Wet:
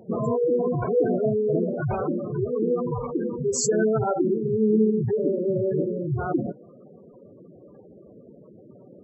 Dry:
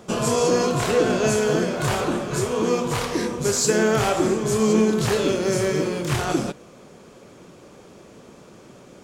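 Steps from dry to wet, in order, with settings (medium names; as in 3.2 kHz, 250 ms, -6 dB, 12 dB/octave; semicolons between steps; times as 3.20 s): modulation noise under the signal 26 dB; spectral gate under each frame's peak -10 dB strong; trim -1 dB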